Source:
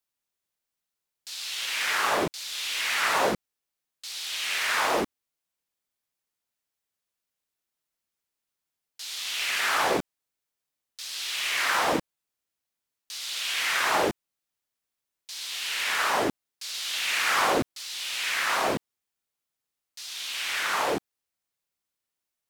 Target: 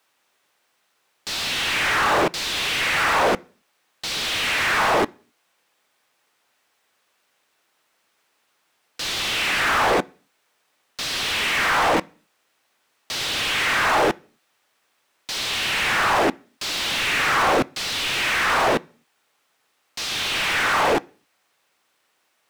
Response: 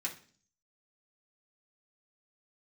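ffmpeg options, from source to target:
-filter_complex "[0:a]asplit=2[link_01][link_02];[link_02]highpass=frequency=720:poles=1,volume=33dB,asoftclip=type=tanh:threshold=-12dB[link_03];[link_01][link_03]amix=inputs=2:normalize=0,lowpass=frequency=1400:poles=1,volume=-6dB,asplit=2[link_04][link_05];[1:a]atrim=start_sample=2205,afade=type=out:start_time=0.32:duration=0.01,atrim=end_sample=14553[link_06];[link_05][link_06]afir=irnorm=-1:irlink=0,volume=-17dB[link_07];[link_04][link_07]amix=inputs=2:normalize=0,volume=1.5dB"

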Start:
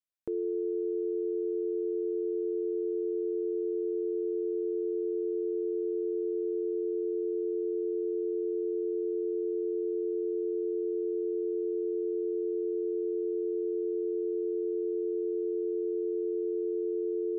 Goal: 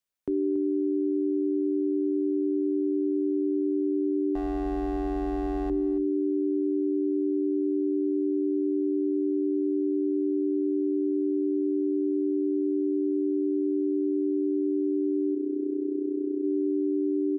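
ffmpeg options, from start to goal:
ffmpeg -i in.wav -filter_complex "[0:a]asettb=1/sr,asplit=3[link_01][link_02][link_03];[link_01]atrim=end=4.354[link_04];[link_02]atrim=start=4.35:end=5.7,asetpts=PTS-STARTPTS,afade=type=in:duration=0.004:curve=qsin,afade=type=out:start_time=1.346:duration=0.004:curve=qsin,aeval=exprs='clip(val(0),-1,0.0119)':channel_layout=same[link_05];[link_03]atrim=start=5.696[link_06];[link_04][link_05]acrossfade=duration=0.004:curve1=hsin:curve2=qsin[link_07];[link_07][link_06]acrossfade=duration=0.004:curve1=qsin:curve2=hsin,asettb=1/sr,asplit=3[link_08][link_09][link_10];[link_08]atrim=end=15.344[link_11];[link_09]atrim=start=15.34:end=16.44,asetpts=PTS-STARTPTS,afade=type=in:duration=0.004:curve=qsin,afade=type=out:start_time=1.096:duration=0.004:curve=qsin,tremolo=f=31:d=0.621[link_12];[link_10]atrim=start=16.436[link_13];[link_11][link_12]acrossfade=duration=0.004:curve1=hsin:curve2=qsin[link_14];[link_14][link_13]acrossfade=duration=0.004:curve1=qsin:curve2=hsin,afreqshift=-54,asplit=2[link_15][link_16];[link_16]aecho=0:1:281:0.188[link_17];[link_15][link_17]amix=inputs=2:normalize=0,volume=5.5dB" out.wav

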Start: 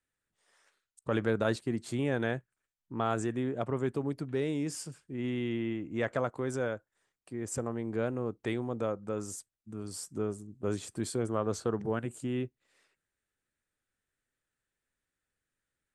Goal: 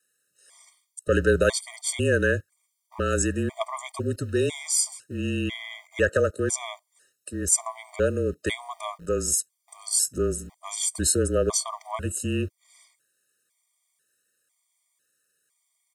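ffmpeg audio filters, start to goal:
ffmpeg -i in.wav -filter_complex "[0:a]equalizer=frequency=9800:width_type=o:width=2.3:gain=15,aecho=1:1:1.8:0.44,afreqshift=-31,acrossover=split=130[link_01][link_02];[link_01]aeval=exprs='val(0)*gte(abs(val(0)),0.00299)':channel_layout=same[link_03];[link_03][link_02]amix=inputs=2:normalize=0,afftfilt=real='re*gt(sin(2*PI*1*pts/sr)*(1-2*mod(floor(b*sr/1024/620),2)),0)':imag='im*gt(sin(2*PI*1*pts/sr)*(1-2*mod(floor(b*sr/1024/620),2)),0)':win_size=1024:overlap=0.75,volume=8dB" out.wav

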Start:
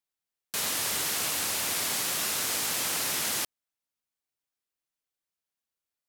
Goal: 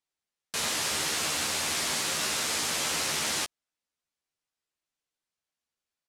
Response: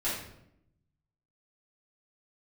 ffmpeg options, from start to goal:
-filter_complex "[0:a]lowpass=8400,asplit=2[link_01][link_02];[link_02]adelay=13,volume=-5dB[link_03];[link_01][link_03]amix=inputs=2:normalize=0,volume=1dB"

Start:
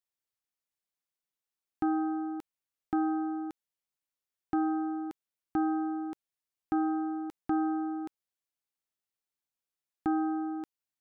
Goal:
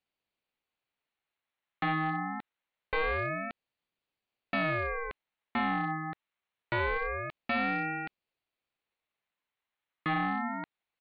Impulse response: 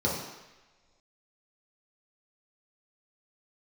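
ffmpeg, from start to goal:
-af "highpass=frequency=870:poles=1,equalizer=frequency=1500:width_type=o:width=1.2:gain=7.5,aresample=8000,asoftclip=type=hard:threshold=-31dB,aresample=44100,aeval=exprs='val(0)*sin(2*PI*790*n/s+790*0.4/0.25*sin(2*PI*0.25*n/s))':channel_layout=same,volume=9dB"

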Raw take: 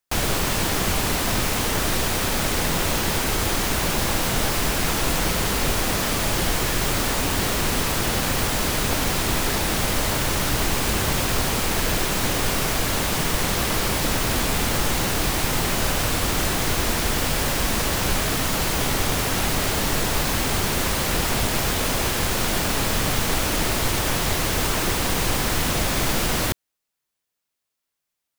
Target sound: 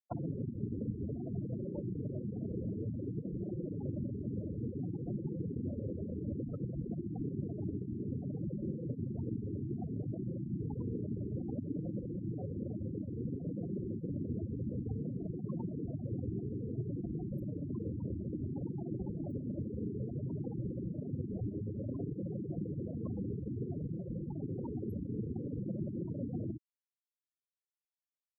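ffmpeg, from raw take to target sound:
ffmpeg -i in.wav -filter_complex "[0:a]aecho=1:1:12|47:0.141|0.422,asoftclip=type=tanh:threshold=-13.5dB,acrossover=split=390|3000[link_01][link_02][link_03];[link_02]acompressor=threshold=-37dB:ratio=6[link_04];[link_01][link_04][link_03]amix=inputs=3:normalize=0,afftfilt=real='hypot(re,im)*cos(2*PI*random(0))':imag='hypot(re,im)*sin(2*PI*random(1))':win_size=512:overlap=0.75,highpass=110,acompressor=threshold=-37dB:ratio=8,equalizer=frequency=4800:width=0.64:gain=-9,flanger=delay=5.5:depth=4.5:regen=-44:speed=0.58:shape=sinusoidal,afftfilt=real='re*gte(hypot(re,im),0.0112)':imag='im*gte(hypot(re,im),0.0112)':win_size=1024:overlap=0.75,highshelf=frequency=2100:width_type=q:width=3:gain=-7,volume=10.5dB" out.wav

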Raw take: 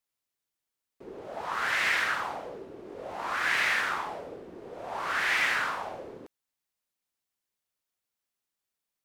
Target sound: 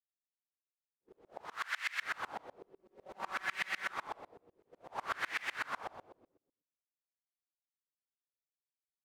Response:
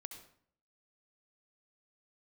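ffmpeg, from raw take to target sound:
-filter_complex "[0:a]asettb=1/sr,asplit=3[link_01][link_02][link_03];[link_01]atrim=end=1.474[link_04];[link_02]atrim=start=1.47:end=2.02,asetpts=PTS-STARTPTS,afade=type=in:duration=0.004:curve=qsin,afade=type=out:start_time=0.546:duration=0.004:curve=qsin,highpass=1200[link_05];[link_03]atrim=start=2.016[link_06];[link_04][link_05]acrossfade=duration=0.004:curve1=hsin:curve2=qsin[link_07];[link_07][link_06]acrossfade=duration=0.004:curve1=qsin:curve2=hsin,agate=range=-33dB:threshold=-31dB:ratio=3:detection=peak,asettb=1/sr,asplit=3[link_08][link_09][link_10];[link_08]atrim=end=2.564[link_11];[link_09]atrim=start=2.56:end=3.92,asetpts=PTS-STARTPTS,afade=type=in:duration=0.004:curve=qsin,afade=type=out:start_time=1.356:duration=0.004:curve=qsin,aecho=1:1:5.3:0.67,atrim=end_sample=59976[link_12];[link_10]atrim=start=3.916[link_13];[link_11][link_12]acrossfade=duration=0.004:curve1=hsin:curve2=qsin[link_14];[link_14][link_13]acrossfade=duration=0.004:curve1=qsin:curve2=hsin,acompressor=threshold=-32dB:ratio=6[link_15];[1:a]atrim=start_sample=2205[link_16];[link_15][link_16]afir=irnorm=-1:irlink=0,aeval=exprs='val(0)*pow(10,-30*if(lt(mod(-8*n/s,1),2*abs(-8)/1000),1-mod(-8*n/s,1)/(2*abs(-8)/1000),(mod(-8*n/s,1)-2*abs(-8)/1000)/(1-2*abs(-8)/1000))/20)':channel_layout=same,volume=8.5dB"

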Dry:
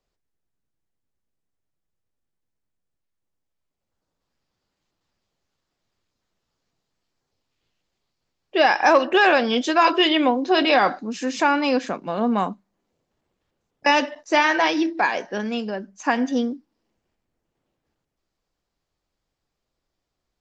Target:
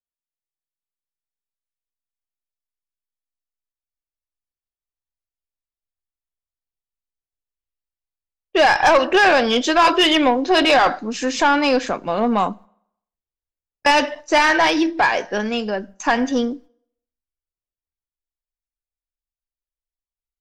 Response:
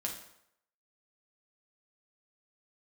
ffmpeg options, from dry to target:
-filter_complex "[0:a]agate=range=-34dB:threshold=-43dB:ratio=16:detection=peak,asubboost=boost=8:cutoff=65,asoftclip=type=tanh:threshold=-14.5dB,asplit=2[link_01][link_02];[1:a]atrim=start_sample=2205[link_03];[link_02][link_03]afir=irnorm=-1:irlink=0,volume=-22dB[link_04];[link_01][link_04]amix=inputs=2:normalize=0,volume=6dB"

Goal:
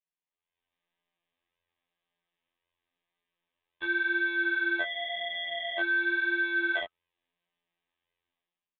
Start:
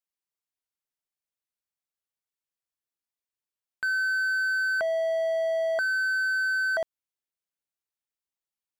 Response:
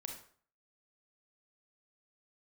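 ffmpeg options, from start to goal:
-af "dynaudnorm=framelen=150:gausssize=7:maxgain=15dB,aresample=8000,volume=24dB,asoftclip=hard,volume=-24dB,aresample=44100,afftfilt=real='hypot(re,im)*cos(PI*b)':imag='0':win_size=2048:overlap=0.75,flanger=delay=16.5:depth=4.8:speed=0.92,asuperstop=centerf=1400:order=20:qfactor=6.2,volume=4dB"

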